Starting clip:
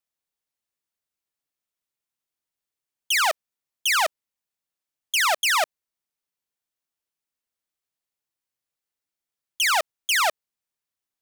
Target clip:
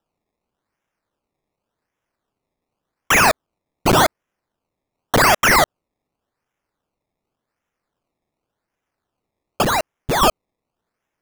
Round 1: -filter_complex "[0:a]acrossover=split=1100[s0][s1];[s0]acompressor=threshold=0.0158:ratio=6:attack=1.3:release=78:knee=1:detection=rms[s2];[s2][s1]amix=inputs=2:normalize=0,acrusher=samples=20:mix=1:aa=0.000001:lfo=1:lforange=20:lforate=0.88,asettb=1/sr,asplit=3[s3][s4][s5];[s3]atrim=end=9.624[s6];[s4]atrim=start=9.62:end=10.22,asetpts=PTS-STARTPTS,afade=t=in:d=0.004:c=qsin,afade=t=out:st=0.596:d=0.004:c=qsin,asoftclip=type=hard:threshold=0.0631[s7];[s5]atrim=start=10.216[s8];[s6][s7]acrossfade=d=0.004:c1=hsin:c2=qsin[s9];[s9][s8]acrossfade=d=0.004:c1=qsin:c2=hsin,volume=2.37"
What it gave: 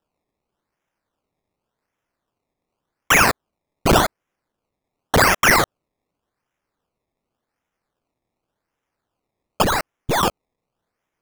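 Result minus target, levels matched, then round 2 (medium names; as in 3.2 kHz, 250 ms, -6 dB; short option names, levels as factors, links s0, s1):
compression: peak gain reduction +14 dB
-filter_complex "[0:a]acrusher=samples=20:mix=1:aa=0.000001:lfo=1:lforange=20:lforate=0.88,asettb=1/sr,asplit=3[s0][s1][s2];[s0]atrim=end=9.624[s3];[s1]atrim=start=9.62:end=10.22,asetpts=PTS-STARTPTS,afade=t=in:d=0.004:c=qsin,afade=t=out:st=0.596:d=0.004:c=qsin,asoftclip=type=hard:threshold=0.0631[s4];[s2]atrim=start=10.216[s5];[s3][s4]acrossfade=d=0.004:c1=hsin:c2=qsin[s6];[s6][s5]acrossfade=d=0.004:c1=qsin:c2=hsin,volume=2.37"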